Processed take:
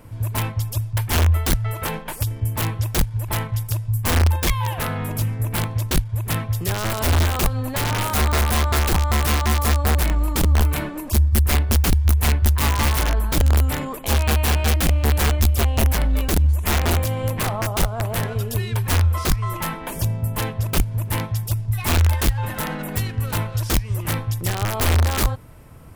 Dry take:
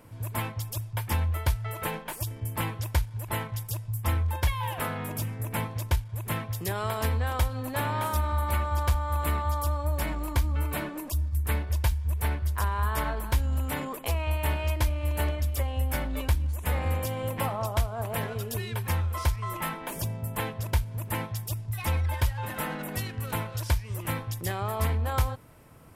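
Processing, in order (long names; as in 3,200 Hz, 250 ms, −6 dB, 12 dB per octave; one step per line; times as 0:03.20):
wrap-around overflow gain 21.5 dB
low-shelf EQ 100 Hz +11.5 dB
level +5 dB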